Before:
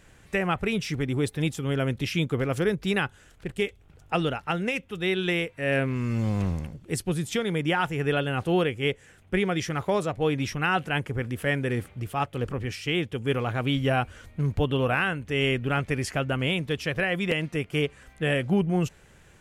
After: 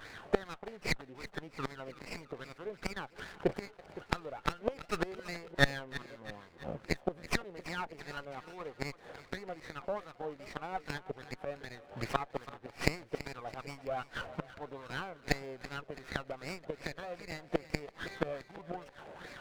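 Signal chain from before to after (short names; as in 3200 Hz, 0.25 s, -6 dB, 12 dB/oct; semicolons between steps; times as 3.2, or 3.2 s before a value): flipped gate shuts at -19 dBFS, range -25 dB; wah 2.5 Hz 610–2300 Hz, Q 2.9; on a send: split-band echo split 620 Hz, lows 0.513 s, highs 0.331 s, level -15 dB; on the sum: running maximum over 9 samples; gain +17.5 dB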